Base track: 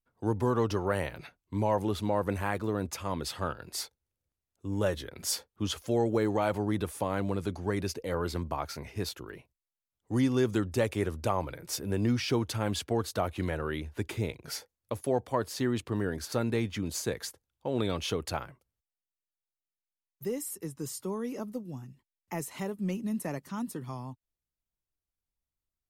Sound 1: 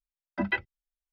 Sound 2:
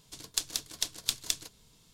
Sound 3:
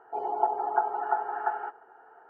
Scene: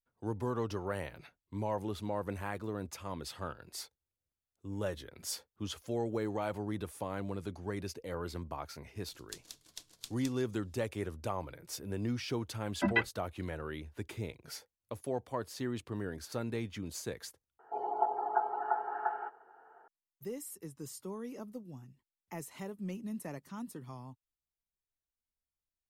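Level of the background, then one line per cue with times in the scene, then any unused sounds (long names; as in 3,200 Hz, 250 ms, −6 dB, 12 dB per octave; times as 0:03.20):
base track −7.5 dB
0:08.95: mix in 2 −16 dB
0:12.44: mix in 1 −1 dB
0:17.59: overwrite with 3 −5 dB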